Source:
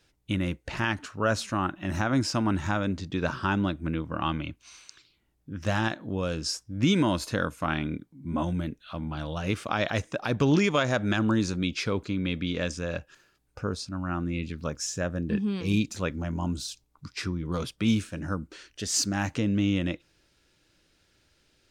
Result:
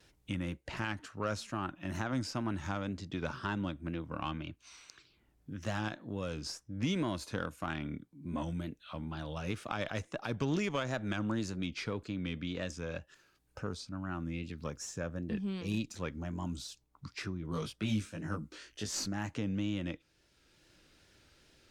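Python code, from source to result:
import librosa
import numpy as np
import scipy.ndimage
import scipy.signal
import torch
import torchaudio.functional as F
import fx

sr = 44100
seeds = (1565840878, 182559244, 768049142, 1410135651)

y = fx.wow_flutter(x, sr, seeds[0], rate_hz=2.1, depth_cents=76.0)
y = fx.cheby_harmonics(y, sr, harmonics=(4,), levels_db=(-24,), full_scale_db=-12.5)
y = fx.doubler(y, sr, ms=19.0, db=-2, at=(17.5, 19.08))
y = fx.band_squash(y, sr, depth_pct=40)
y = F.gain(torch.from_numpy(y), -9.0).numpy()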